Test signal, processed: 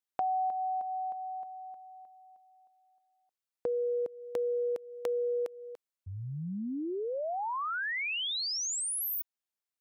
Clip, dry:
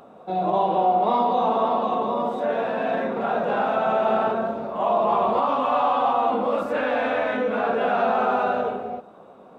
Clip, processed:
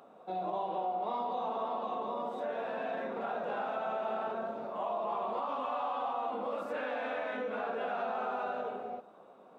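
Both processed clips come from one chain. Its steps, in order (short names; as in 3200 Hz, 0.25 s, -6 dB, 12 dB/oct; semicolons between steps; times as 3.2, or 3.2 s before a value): HPF 290 Hz 6 dB/oct; compressor 2.5:1, threshold -26 dBFS; gain -8 dB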